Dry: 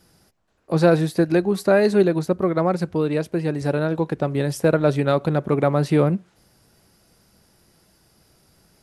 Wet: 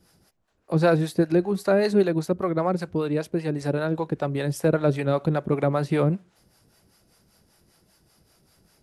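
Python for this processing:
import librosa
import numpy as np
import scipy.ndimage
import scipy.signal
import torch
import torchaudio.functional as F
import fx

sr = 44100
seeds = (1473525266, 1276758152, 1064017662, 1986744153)

y = fx.harmonic_tremolo(x, sr, hz=5.1, depth_pct=70, crossover_hz=520.0)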